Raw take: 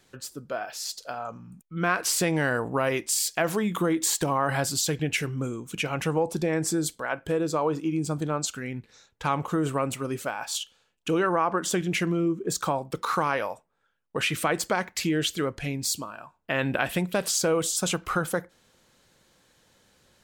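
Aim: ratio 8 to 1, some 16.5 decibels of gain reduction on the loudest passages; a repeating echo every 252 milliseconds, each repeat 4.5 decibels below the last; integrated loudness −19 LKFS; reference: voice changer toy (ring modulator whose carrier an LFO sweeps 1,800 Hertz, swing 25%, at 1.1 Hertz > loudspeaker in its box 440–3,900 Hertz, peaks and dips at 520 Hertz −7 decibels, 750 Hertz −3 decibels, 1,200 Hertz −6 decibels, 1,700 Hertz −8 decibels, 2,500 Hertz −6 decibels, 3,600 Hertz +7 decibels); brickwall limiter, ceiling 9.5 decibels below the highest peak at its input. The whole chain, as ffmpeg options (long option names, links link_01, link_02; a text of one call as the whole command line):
ffmpeg -i in.wav -af "acompressor=threshold=-38dB:ratio=8,alimiter=level_in=7.5dB:limit=-24dB:level=0:latency=1,volume=-7.5dB,aecho=1:1:252|504|756|1008|1260|1512|1764|2016|2268:0.596|0.357|0.214|0.129|0.0772|0.0463|0.0278|0.0167|0.01,aeval=exprs='val(0)*sin(2*PI*1800*n/s+1800*0.25/1.1*sin(2*PI*1.1*n/s))':channel_layout=same,highpass=440,equalizer=frequency=520:width_type=q:width=4:gain=-7,equalizer=frequency=750:width_type=q:width=4:gain=-3,equalizer=frequency=1200:width_type=q:width=4:gain=-6,equalizer=frequency=1700:width_type=q:width=4:gain=-8,equalizer=frequency=2500:width_type=q:width=4:gain=-6,equalizer=frequency=3600:width_type=q:width=4:gain=7,lowpass=frequency=3900:width=0.5412,lowpass=frequency=3900:width=1.3066,volume=27.5dB" out.wav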